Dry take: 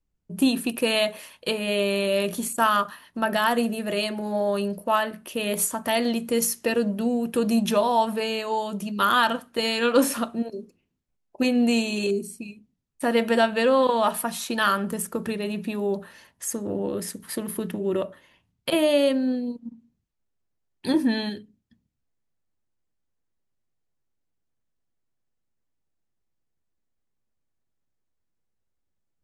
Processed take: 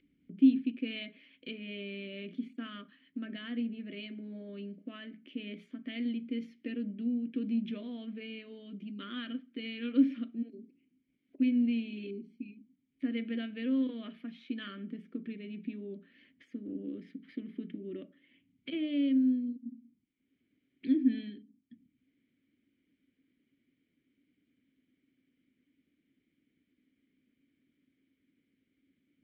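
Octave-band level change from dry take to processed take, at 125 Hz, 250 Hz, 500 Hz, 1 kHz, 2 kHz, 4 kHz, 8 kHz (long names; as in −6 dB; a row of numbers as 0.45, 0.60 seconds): below −10 dB, −5.5 dB, −22.5 dB, −32.5 dB, −18.5 dB, −17.0 dB, below −40 dB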